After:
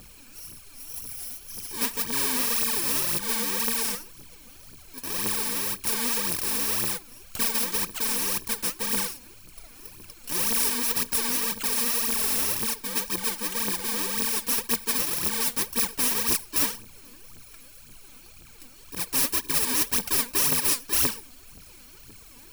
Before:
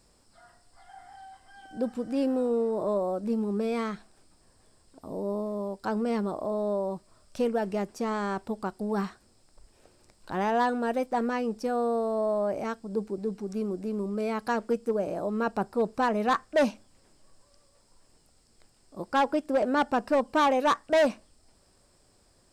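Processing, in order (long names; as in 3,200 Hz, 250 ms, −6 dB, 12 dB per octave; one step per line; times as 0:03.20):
samples in bit-reversed order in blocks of 64 samples
phase shifter 1.9 Hz, delay 4.3 ms, feedback 72%
every bin compressed towards the loudest bin 2 to 1
level −1.5 dB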